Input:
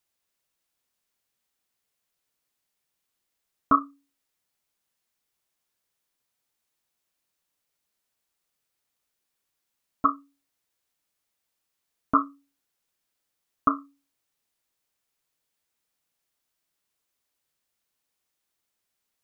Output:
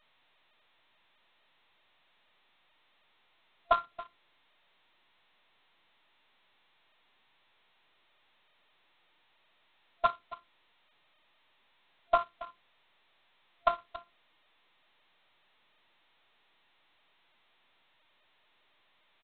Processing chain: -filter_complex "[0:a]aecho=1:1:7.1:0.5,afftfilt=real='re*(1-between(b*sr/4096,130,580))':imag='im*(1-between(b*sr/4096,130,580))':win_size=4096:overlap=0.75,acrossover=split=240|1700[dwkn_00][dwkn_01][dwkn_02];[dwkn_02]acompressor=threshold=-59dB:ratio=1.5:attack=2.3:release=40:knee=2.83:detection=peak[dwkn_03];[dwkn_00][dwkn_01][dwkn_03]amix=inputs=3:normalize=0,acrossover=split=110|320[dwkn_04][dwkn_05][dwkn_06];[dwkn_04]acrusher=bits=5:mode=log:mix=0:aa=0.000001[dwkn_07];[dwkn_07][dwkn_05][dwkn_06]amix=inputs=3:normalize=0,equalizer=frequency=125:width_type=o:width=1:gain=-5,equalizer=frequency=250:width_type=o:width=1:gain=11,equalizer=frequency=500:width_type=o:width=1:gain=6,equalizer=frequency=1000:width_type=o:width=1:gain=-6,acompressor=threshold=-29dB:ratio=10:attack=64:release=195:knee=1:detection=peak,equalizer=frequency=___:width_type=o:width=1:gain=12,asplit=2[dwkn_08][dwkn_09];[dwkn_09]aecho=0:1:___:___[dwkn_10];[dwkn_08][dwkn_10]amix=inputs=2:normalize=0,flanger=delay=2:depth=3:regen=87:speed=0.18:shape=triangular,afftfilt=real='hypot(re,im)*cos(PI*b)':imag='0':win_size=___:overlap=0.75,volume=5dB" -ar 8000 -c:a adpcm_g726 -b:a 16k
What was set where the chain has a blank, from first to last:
690, 277, 0.133, 512